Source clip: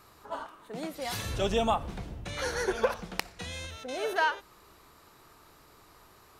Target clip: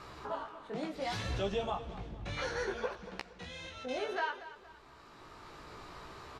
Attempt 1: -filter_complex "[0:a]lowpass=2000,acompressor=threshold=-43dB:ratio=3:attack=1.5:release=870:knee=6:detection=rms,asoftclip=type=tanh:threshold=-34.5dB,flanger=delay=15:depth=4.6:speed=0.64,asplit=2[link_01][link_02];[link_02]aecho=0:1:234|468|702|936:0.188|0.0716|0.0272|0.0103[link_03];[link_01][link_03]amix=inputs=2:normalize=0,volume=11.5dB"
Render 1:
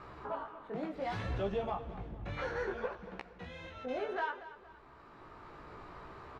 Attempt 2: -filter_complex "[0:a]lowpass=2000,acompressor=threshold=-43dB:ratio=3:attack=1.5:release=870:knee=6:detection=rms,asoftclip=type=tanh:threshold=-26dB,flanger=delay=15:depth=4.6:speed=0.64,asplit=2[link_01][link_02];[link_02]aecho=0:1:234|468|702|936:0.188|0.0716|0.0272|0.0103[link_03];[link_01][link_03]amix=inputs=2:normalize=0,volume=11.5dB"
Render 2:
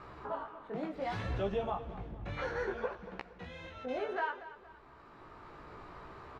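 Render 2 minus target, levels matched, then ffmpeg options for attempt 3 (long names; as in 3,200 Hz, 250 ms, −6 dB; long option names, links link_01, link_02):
4,000 Hz band −8.5 dB
-filter_complex "[0:a]lowpass=4800,acompressor=threshold=-43dB:ratio=3:attack=1.5:release=870:knee=6:detection=rms,asoftclip=type=tanh:threshold=-26dB,flanger=delay=15:depth=4.6:speed=0.64,asplit=2[link_01][link_02];[link_02]aecho=0:1:234|468|702|936:0.188|0.0716|0.0272|0.0103[link_03];[link_01][link_03]amix=inputs=2:normalize=0,volume=11.5dB"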